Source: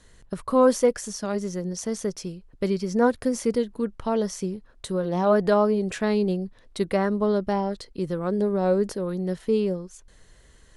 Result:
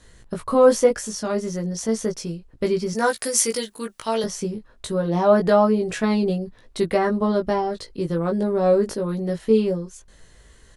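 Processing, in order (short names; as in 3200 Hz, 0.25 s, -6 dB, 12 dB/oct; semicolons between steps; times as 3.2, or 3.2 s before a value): 2.93–4.24 tilt +4.5 dB/oct; doubler 18 ms -3 dB; gain +2 dB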